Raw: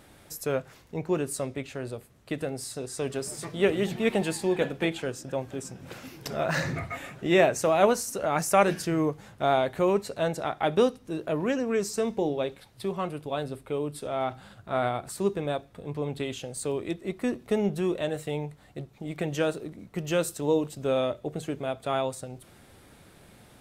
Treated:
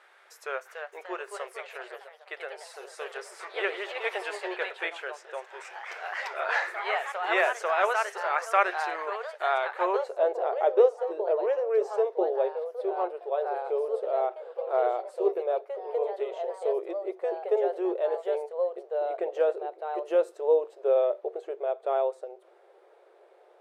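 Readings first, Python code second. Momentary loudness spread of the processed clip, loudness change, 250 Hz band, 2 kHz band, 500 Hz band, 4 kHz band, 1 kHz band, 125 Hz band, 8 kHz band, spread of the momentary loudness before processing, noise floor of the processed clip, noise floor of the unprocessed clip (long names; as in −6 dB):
15 LU, 0.0 dB, −12.5 dB, +2.5 dB, +1.0 dB, −5.0 dB, +1.5 dB, below −40 dB, below −10 dB, 13 LU, −58 dBFS, −55 dBFS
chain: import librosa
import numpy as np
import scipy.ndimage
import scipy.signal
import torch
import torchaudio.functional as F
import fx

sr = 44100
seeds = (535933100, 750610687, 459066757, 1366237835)

y = fx.brickwall_highpass(x, sr, low_hz=340.0)
y = fx.echo_pitch(y, sr, ms=340, semitones=2, count=3, db_per_echo=-6.0)
y = fx.filter_sweep_bandpass(y, sr, from_hz=1500.0, to_hz=540.0, start_s=9.7, end_s=10.29, q=1.4)
y = y * librosa.db_to_amplitude(4.0)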